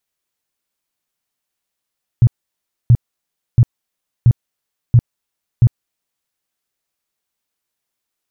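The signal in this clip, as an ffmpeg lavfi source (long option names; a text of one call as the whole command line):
ffmpeg -f lavfi -i "aevalsrc='0.596*sin(2*PI*119*mod(t,0.68))*lt(mod(t,0.68),6/119)':duration=4.08:sample_rate=44100" out.wav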